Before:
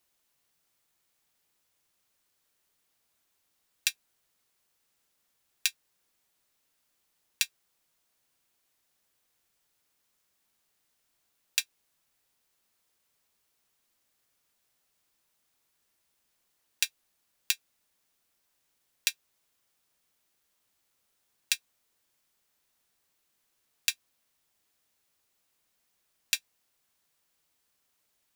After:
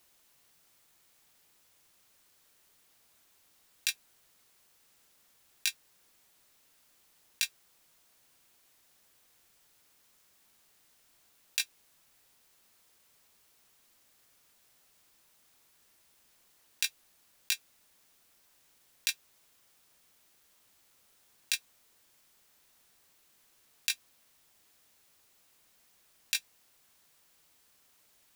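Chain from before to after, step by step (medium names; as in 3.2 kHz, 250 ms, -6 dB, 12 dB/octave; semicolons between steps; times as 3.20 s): compressor with a negative ratio -29 dBFS, ratio -0.5; trim +3.5 dB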